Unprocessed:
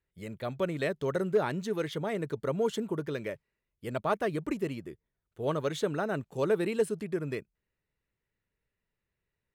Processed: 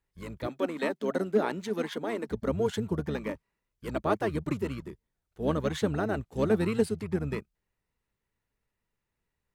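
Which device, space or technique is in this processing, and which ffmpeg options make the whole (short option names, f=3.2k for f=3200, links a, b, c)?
octave pedal: -filter_complex "[0:a]asplit=2[a][b];[b]asetrate=22050,aresample=44100,atempo=2,volume=-3dB[c];[a][c]amix=inputs=2:normalize=0,asettb=1/sr,asplit=3[d][e][f];[d]atrim=end=0.474[g];[e]atrim=start=0.47:end=2.29,asetpts=PTS-STARTPTS,afade=t=in:d=0.004:c=qsin,afade=t=out:st=1.816:d=0.004:c=qsin,highpass=f=210:w=0.5412,highpass=f=210:w=1.3066[h];[f]atrim=start=2.286[i];[g][h]acrossfade=d=0.004:c1=hsin:c2=qsin[j];[j][i]acrossfade=d=0.004:c1=qsin:c2=hsin"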